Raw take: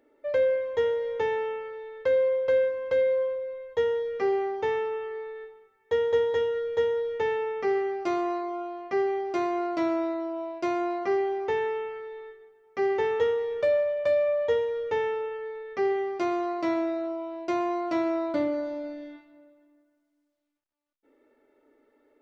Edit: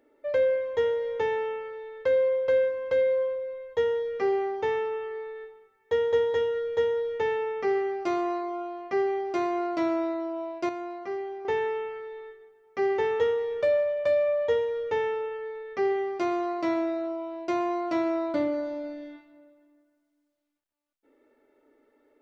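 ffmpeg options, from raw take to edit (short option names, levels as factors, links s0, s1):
-filter_complex "[0:a]asplit=3[s0][s1][s2];[s0]atrim=end=10.692[s3];[s1]atrim=start=10.688:end=11.452,asetpts=PTS-STARTPTS,volume=0.422[s4];[s2]atrim=start=11.448[s5];[s3][s4]acrossfade=d=0.004:c1=hsin:c2=hsin[s6];[s6][s5]acrossfade=d=0.004:c1=hsin:c2=hsin"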